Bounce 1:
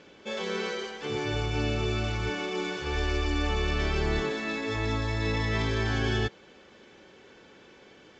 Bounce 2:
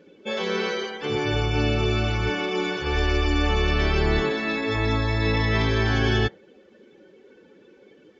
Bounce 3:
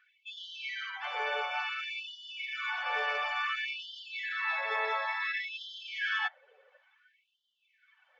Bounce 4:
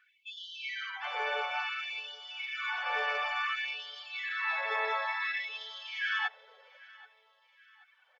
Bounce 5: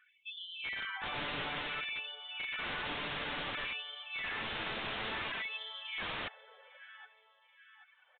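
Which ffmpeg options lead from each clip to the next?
-af "afftdn=nr=16:nf=-47,volume=2"
-filter_complex "[0:a]acrossover=split=590 2700:gain=0.126 1 0.112[s0][s1][s2];[s0][s1][s2]amix=inputs=3:normalize=0,afftfilt=real='re*gte(b*sr/1024,400*pow(2900/400,0.5+0.5*sin(2*PI*0.57*pts/sr)))':imag='im*gte(b*sr/1024,400*pow(2900/400,0.5+0.5*sin(2*PI*0.57*pts/sr)))':win_size=1024:overlap=0.75"
-af "aecho=1:1:781|1562|2343:0.0794|0.035|0.0154"
-af "aeval=exprs='(mod(33.5*val(0)+1,2)-1)/33.5':c=same,aresample=8000,aresample=44100"

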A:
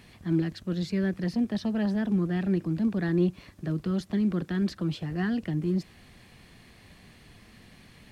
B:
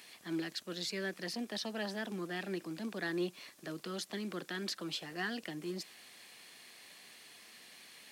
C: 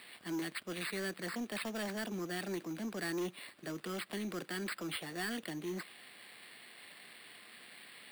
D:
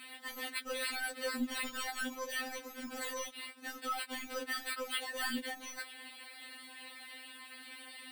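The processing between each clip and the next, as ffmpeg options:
-af "highpass=410,highshelf=f=2700:g=12,volume=0.596"
-af "aresample=11025,asoftclip=type=tanh:threshold=0.0178,aresample=44100,acrusher=samples=7:mix=1:aa=0.000001,volume=1.33"
-af "afftfilt=real='re*3.46*eq(mod(b,12),0)':imag='im*3.46*eq(mod(b,12),0)':win_size=2048:overlap=0.75,volume=2.11"

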